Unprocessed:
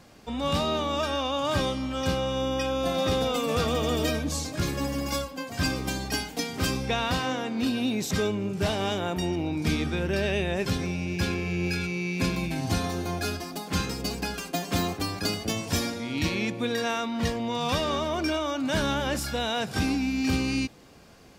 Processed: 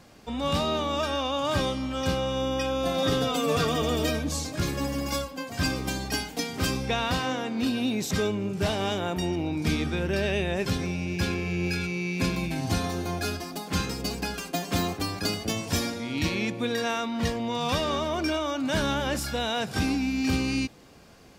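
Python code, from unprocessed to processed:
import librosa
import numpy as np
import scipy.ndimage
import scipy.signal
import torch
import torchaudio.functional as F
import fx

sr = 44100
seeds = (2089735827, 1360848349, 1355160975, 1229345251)

y = fx.comb(x, sr, ms=7.0, depth=0.65, at=(3.02, 3.82))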